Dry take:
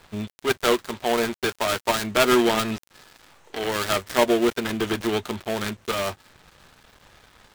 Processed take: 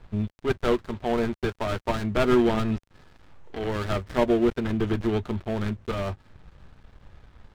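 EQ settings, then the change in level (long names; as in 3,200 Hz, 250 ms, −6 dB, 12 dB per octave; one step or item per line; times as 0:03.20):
RIAA equalisation playback
−5.5 dB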